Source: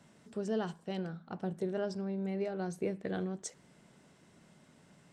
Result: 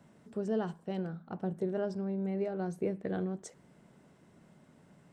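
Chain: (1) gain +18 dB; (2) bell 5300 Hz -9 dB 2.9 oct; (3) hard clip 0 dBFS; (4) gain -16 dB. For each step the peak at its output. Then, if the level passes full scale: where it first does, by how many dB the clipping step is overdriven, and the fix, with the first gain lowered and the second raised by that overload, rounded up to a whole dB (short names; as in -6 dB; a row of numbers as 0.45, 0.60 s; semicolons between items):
-5.0, -5.5, -5.5, -21.5 dBFS; no overload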